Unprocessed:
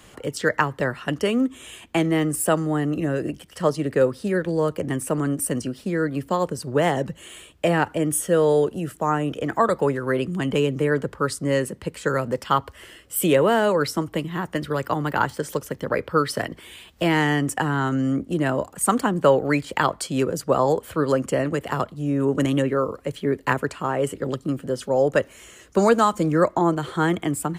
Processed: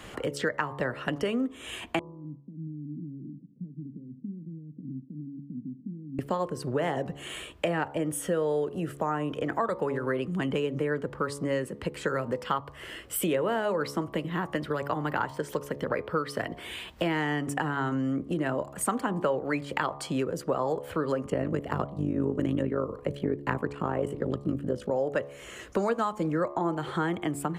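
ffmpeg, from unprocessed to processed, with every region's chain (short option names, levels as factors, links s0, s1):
-filter_complex "[0:a]asettb=1/sr,asplit=3[s0][s1][s2];[s0]atrim=end=1.994[s3];[s1]atrim=start=1.99:end=6.19,asetpts=PTS-STARTPTS,afade=t=in:d=0.004:c=qsin,afade=t=out:st=4.196:d=0.004:c=qsin,acompressor=threshold=0.0158:ratio=8:attack=3.2:release=140:knee=1:detection=peak,asuperpass=centerf=190:order=8:qfactor=1.2[s4];[s2]atrim=start=6.186[s5];[s3][s4]acrossfade=d=0.004:c1=hsin:c2=qsin[s6];[s6][s5]acrossfade=d=0.004:c1=qsin:c2=hsin,asettb=1/sr,asplit=3[s7][s8][s9];[s7]atrim=end=21.244[s10];[s8]atrim=start=21.24:end=24.91,asetpts=PTS-STARTPTS,afade=t=in:d=0.004:c=qsin,afade=t=out:st=3.666:d=0.004:c=qsin,lowshelf=f=490:g=9.5,tremolo=f=52:d=0.75[s11];[s9]atrim=start=24.906[s12];[s10][s11]acrossfade=d=0.004:c1=hsin:c2=qsin[s13];[s13][s12]acrossfade=d=0.004:c1=qsin:c2=hsin,bass=f=250:g=-2,treble=f=4000:g=-8,bandreject=f=70.94:t=h:w=4,bandreject=f=141.88:t=h:w=4,bandreject=f=212.82:t=h:w=4,bandreject=f=283.76:t=h:w=4,bandreject=f=354.7:t=h:w=4,bandreject=f=425.64:t=h:w=4,bandreject=f=496.58:t=h:w=4,bandreject=f=567.52:t=h:w=4,bandreject=f=638.46:t=h:w=4,bandreject=f=709.4:t=h:w=4,bandreject=f=780.34:t=h:w=4,bandreject=f=851.28:t=h:w=4,bandreject=f=922.22:t=h:w=4,bandreject=f=993.16:t=h:w=4,bandreject=f=1064.1:t=h:w=4,bandreject=f=1135.04:t=h:w=4,bandreject=f=1205.98:t=h:w=4,acompressor=threshold=0.0158:ratio=3,volume=2"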